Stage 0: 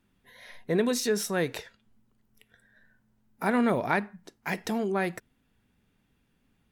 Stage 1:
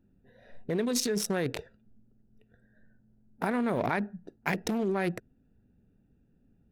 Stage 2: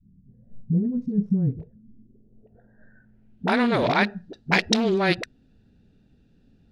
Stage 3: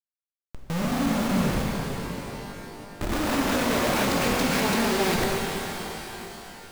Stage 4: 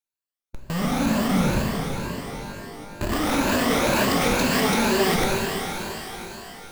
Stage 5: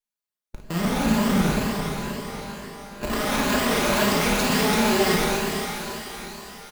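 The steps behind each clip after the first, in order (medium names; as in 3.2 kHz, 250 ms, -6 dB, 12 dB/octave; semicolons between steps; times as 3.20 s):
local Wiener filter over 41 samples; in parallel at +3 dB: compressor with a negative ratio -32 dBFS, ratio -0.5; on the sum: trim -5.5 dB
treble shelf 4.1 kHz +12 dB; phase dispersion highs, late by 60 ms, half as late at 320 Hz; low-pass sweep 170 Hz -> 4.1 kHz, 1.66–3.57 s; trim +7 dB
ever faster or slower copies 181 ms, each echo +2 st, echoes 3, each echo -6 dB; Schmitt trigger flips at -33 dBFS; pitch-shifted reverb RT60 3.6 s, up +12 st, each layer -8 dB, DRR -1.5 dB; trim -2 dB
drifting ripple filter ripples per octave 1.4, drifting +2.1 Hz, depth 8 dB; trim +2 dB
comb filter that takes the minimum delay 4.8 ms; on a send: early reflections 35 ms -9 dB, 54 ms -7.5 dB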